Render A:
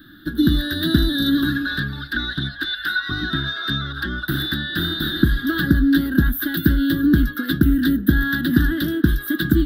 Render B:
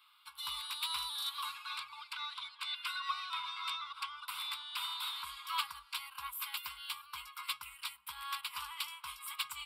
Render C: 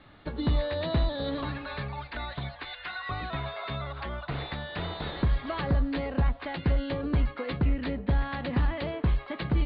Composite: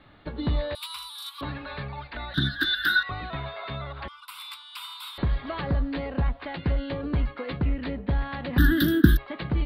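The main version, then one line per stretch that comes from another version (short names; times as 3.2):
C
0.75–1.41 from B
2.34–3.03 from A
4.08–5.18 from B
8.58–9.17 from A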